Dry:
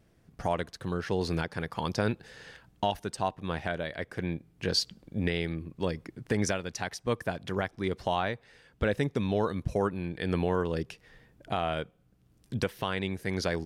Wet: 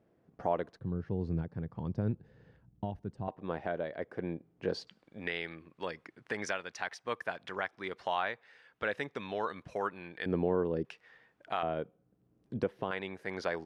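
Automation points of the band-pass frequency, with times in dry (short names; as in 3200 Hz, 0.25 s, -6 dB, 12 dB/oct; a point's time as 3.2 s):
band-pass, Q 0.75
500 Hz
from 0.79 s 120 Hz
from 3.28 s 500 Hz
from 4.87 s 1500 Hz
from 10.26 s 360 Hz
from 10.85 s 1400 Hz
from 11.63 s 390 Hz
from 12.91 s 1000 Hz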